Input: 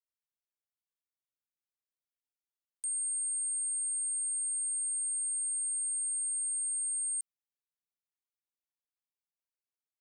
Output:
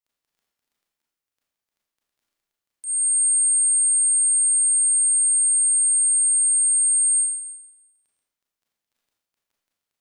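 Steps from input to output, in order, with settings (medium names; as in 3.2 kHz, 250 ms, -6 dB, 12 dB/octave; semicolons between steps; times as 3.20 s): crackle 14 per s -58 dBFS; Schroeder reverb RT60 0.97 s, combs from 27 ms, DRR -4 dB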